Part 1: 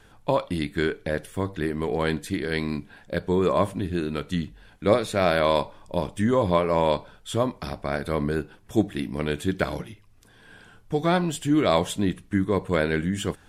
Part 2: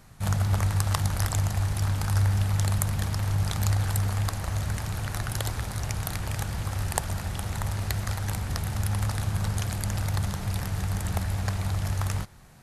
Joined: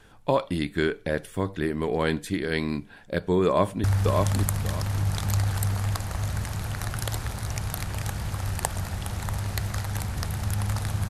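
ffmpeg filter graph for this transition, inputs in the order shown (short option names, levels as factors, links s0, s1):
-filter_complex "[0:a]apad=whole_dur=11.09,atrim=end=11.09,atrim=end=3.842[s0];[1:a]atrim=start=2.168:end=9.42[s1];[s0][s1]acrossfade=d=0.004:c1=hsin:c2=hsin,asplit=2[s2][s3];[s3]afade=t=in:st=3.46:d=0.01,afade=t=out:st=3.84:d=0.01,aecho=0:1:590|1180|1770:0.707946|0.141589|0.0283178[s4];[s2][s4]amix=inputs=2:normalize=0"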